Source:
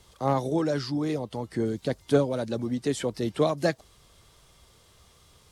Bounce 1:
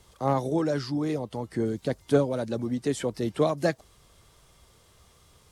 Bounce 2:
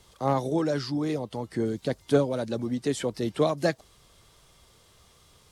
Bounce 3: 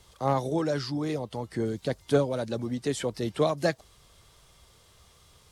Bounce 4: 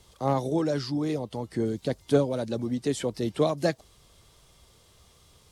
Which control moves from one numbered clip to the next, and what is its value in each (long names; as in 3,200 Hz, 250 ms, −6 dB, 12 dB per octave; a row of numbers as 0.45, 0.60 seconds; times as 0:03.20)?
parametric band, centre frequency: 3,900, 64, 270, 1,500 Hertz